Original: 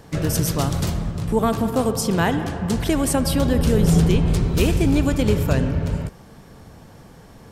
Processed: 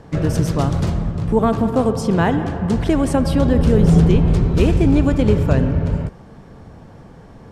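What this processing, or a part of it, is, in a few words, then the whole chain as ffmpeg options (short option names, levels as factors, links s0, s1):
through cloth: -af "lowpass=9300,highshelf=f=2500:g=-11.5,volume=1.58"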